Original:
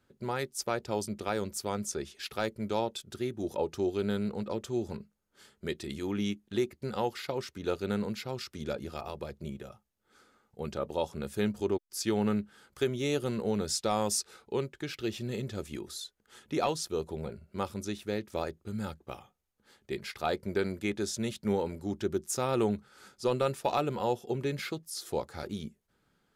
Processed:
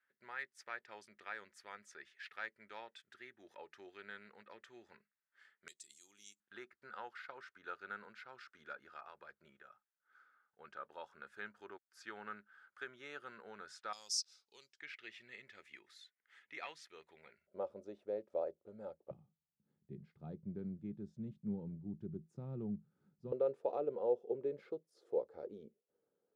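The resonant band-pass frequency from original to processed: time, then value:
resonant band-pass, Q 4.5
1,800 Hz
from 0:05.68 7,500 Hz
from 0:06.40 1,500 Hz
from 0:13.93 5,300 Hz
from 0:14.79 2,000 Hz
from 0:17.47 560 Hz
from 0:19.11 160 Hz
from 0:23.32 480 Hz

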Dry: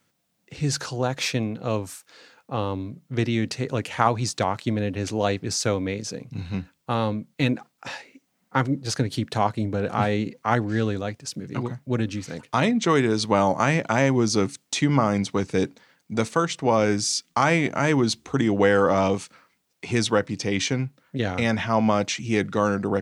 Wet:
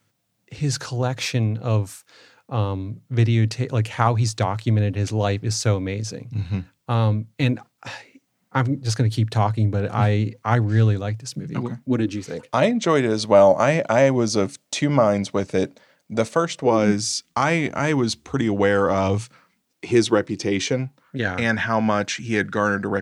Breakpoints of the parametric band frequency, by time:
parametric band +12.5 dB 0.32 octaves
0:11.17 110 Hz
0:12.57 590 Hz
0:16.59 590 Hz
0:17.16 77 Hz
0:18.99 77 Hz
0:19.87 350 Hz
0:20.59 350 Hz
0:21.19 1,600 Hz

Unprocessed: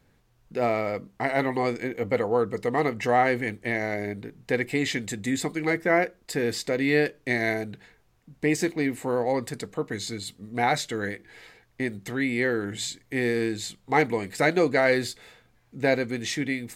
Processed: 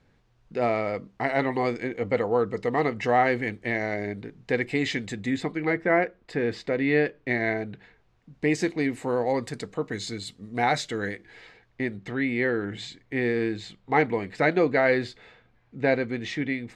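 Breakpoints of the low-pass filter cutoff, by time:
0:04.97 5,400 Hz
0:05.58 2,800 Hz
0:07.50 2,800 Hz
0:08.83 7,000 Hz
0:11.07 7,000 Hz
0:12.04 3,200 Hz

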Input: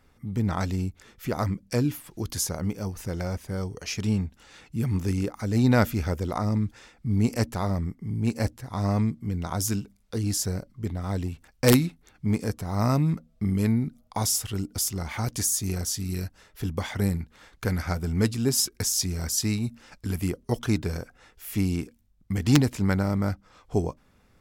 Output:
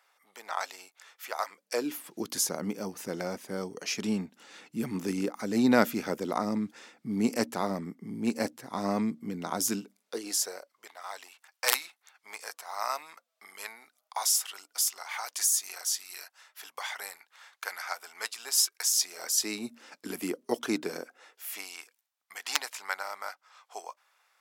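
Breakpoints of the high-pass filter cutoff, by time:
high-pass filter 24 dB per octave
0:01.51 680 Hz
0:02.10 210 Hz
0:09.69 210 Hz
0:10.94 780 Hz
0:18.88 780 Hz
0:19.65 270 Hz
0:21.01 270 Hz
0:21.75 790 Hz

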